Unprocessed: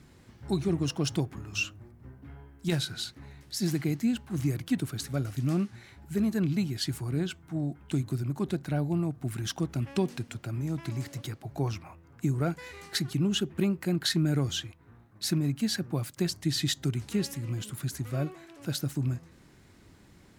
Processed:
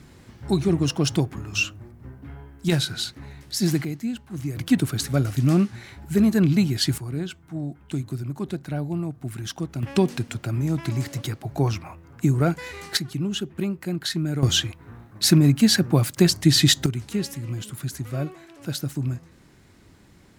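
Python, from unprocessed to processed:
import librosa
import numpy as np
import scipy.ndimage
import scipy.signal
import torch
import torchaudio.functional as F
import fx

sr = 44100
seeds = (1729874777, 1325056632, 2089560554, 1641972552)

y = fx.gain(x, sr, db=fx.steps((0.0, 7.0), (3.85, -1.0), (4.57, 9.0), (6.98, 1.0), (9.83, 8.0), (12.97, 0.5), (14.43, 12.0), (16.86, 3.0)))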